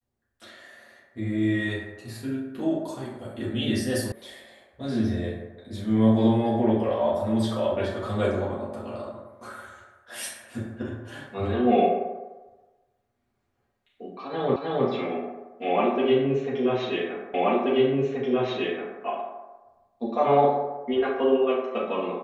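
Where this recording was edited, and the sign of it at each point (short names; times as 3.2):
4.12 sound cut off
14.56 repeat of the last 0.31 s
17.34 repeat of the last 1.68 s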